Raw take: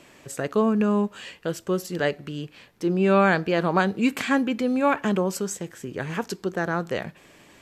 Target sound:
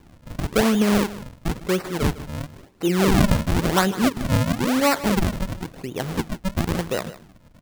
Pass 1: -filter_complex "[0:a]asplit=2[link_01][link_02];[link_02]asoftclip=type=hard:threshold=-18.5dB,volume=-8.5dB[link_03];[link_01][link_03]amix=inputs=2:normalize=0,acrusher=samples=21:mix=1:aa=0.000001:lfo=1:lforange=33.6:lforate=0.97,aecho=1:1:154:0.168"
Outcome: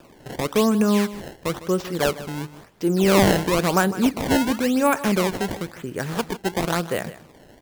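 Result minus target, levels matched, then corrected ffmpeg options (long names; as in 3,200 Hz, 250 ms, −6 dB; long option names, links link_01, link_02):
sample-and-hold swept by an LFO: distortion −9 dB
-filter_complex "[0:a]asplit=2[link_01][link_02];[link_02]asoftclip=type=hard:threshold=-18.5dB,volume=-8.5dB[link_03];[link_01][link_03]amix=inputs=2:normalize=0,acrusher=samples=65:mix=1:aa=0.000001:lfo=1:lforange=104:lforate=0.97,aecho=1:1:154:0.168"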